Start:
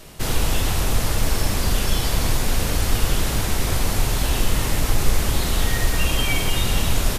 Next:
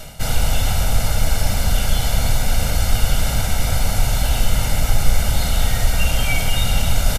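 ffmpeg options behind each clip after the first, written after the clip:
ffmpeg -i in.wav -af "aecho=1:1:1.4:0.73,areverse,acompressor=mode=upward:threshold=-13dB:ratio=2.5,areverse,volume=-1dB" out.wav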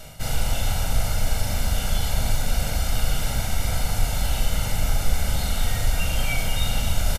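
ffmpeg -i in.wav -filter_complex "[0:a]asplit=2[link_01][link_02];[link_02]adelay=40,volume=-4.5dB[link_03];[link_01][link_03]amix=inputs=2:normalize=0,volume=-6.5dB" out.wav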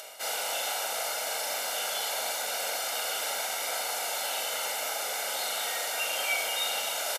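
ffmpeg -i in.wav -af "highpass=frequency=450:width=0.5412,highpass=frequency=450:width=1.3066,acompressor=mode=upward:threshold=-43dB:ratio=2.5" out.wav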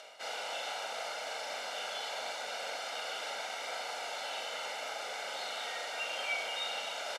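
ffmpeg -i in.wav -af "lowpass=4600,volume=-5dB" out.wav

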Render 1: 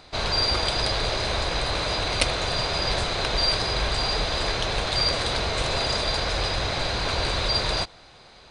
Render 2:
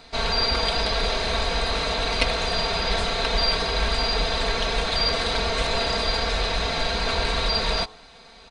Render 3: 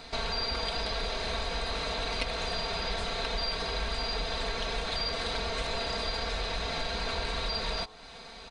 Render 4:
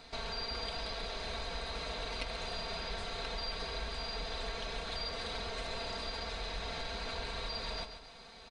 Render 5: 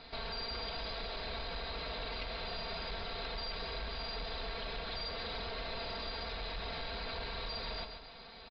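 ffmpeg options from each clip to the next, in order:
ffmpeg -i in.wav -filter_complex "[0:a]bandreject=frequency=108:width_type=h:width=4,bandreject=frequency=216:width_type=h:width=4,bandreject=frequency=324:width_type=h:width=4,bandreject=frequency=432:width_type=h:width=4,bandreject=frequency=540:width_type=h:width=4,bandreject=frequency=648:width_type=h:width=4,bandreject=frequency=756:width_type=h:width=4,bandreject=frequency=864:width_type=h:width=4,bandreject=frequency=972:width_type=h:width=4,bandreject=frequency=1080:width_type=h:width=4,bandreject=frequency=1188:width_type=h:width=4,bandreject=frequency=1296:width_type=h:width=4,acrossover=split=4800[link_01][link_02];[link_02]acompressor=threshold=-38dB:ratio=4:attack=1:release=60[link_03];[link_01][link_03]amix=inputs=2:normalize=0,aecho=1:1:4.4:0.73" out.wav
ffmpeg -i in.wav -af "acompressor=threshold=-36dB:ratio=2.5,volume=1.5dB" out.wav
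ffmpeg -i in.wav -af "aecho=1:1:136|272|408|544|680:0.335|0.147|0.0648|0.0285|0.0126,volume=-7.5dB" out.wav
ffmpeg -i in.wav -af "asoftclip=type=tanh:threshold=-35.5dB,aresample=11025,aresample=44100,volume=1.5dB" out.wav

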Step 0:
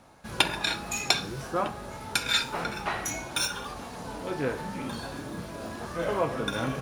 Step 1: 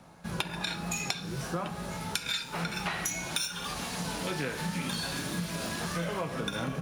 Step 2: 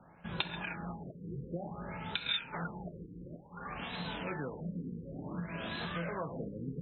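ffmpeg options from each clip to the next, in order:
ffmpeg -i in.wav -filter_complex "[0:a]acrossover=split=190|1800[link_01][link_02][link_03];[link_03]dynaudnorm=framelen=460:gausssize=5:maxgain=12.5dB[link_04];[link_01][link_02][link_04]amix=inputs=3:normalize=0,equalizer=frequency=170:width_type=o:width=0.27:gain=14.5,acompressor=threshold=-29dB:ratio=12" out.wav
ffmpeg -i in.wav -af "crystalizer=i=2.5:c=0,afftfilt=real='re*lt(b*sr/1024,490*pow(4200/490,0.5+0.5*sin(2*PI*0.56*pts/sr)))':imag='im*lt(b*sr/1024,490*pow(4200/490,0.5+0.5*sin(2*PI*0.56*pts/sr)))':win_size=1024:overlap=0.75,volume=-5dB" out.wav

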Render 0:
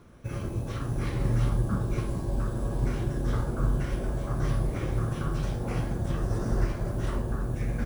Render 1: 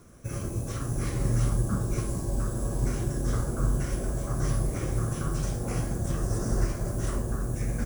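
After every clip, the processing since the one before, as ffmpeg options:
ffmpeg -i in.wav -af "highshelf=frequency=5000:width_type=q:width=1.5:gain=9.5,bandreject=frequency=890:width=12" out.wav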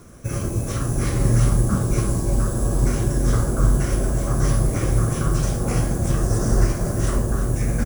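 ffmpeg -i in.wav -af "aecho=1:1:342:0.251,volume=8dB" out.wav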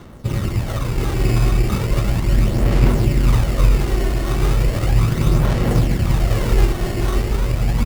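ffmpeg -i in.wav -af "acrusher=samples=18:mix=1:aa=0.000001,aphaser=in_gain=1:out_gain=1:delay=2.8:decay=0.39:speed=0.36:type=sinusoidal,volume=1dB" out.wav

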